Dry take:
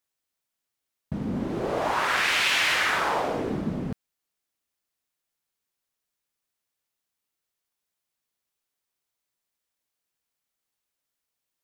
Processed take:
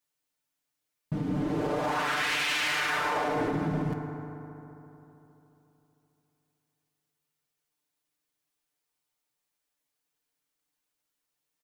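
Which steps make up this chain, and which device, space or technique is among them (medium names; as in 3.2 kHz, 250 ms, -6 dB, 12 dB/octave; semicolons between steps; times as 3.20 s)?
comb 6.7 ms, depth 86%; FDN reverb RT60 3.3 s, high-frequency decay 0.45×, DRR 7 dB; soft clipper into limiter (saturation -11 dBFS, distortion -24 dB; peak limiter -18.5 dBFS, peak gain reduction 6.5 dB); trim -2.5 dB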